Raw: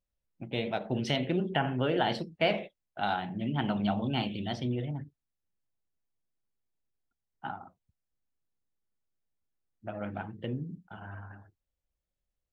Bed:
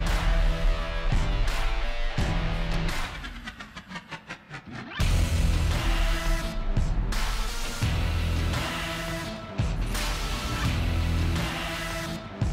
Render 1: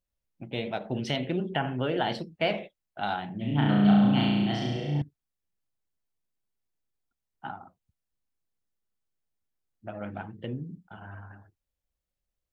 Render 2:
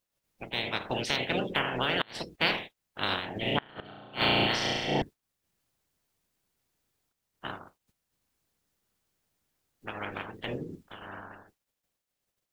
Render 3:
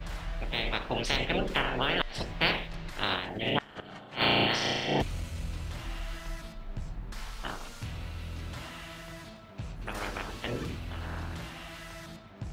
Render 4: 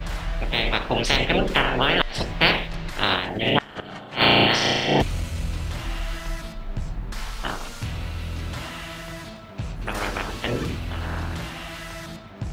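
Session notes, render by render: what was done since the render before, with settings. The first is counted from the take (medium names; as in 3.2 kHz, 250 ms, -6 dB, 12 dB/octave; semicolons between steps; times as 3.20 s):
3.39–5.02 s: flutter echo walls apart 5.9 m, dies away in 1.3 s
spectral peaks clipped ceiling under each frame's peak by 25 dB; inverted gate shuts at -11 dBFS, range -29 dB
add bed -12.5 dB
trim +8.5 dB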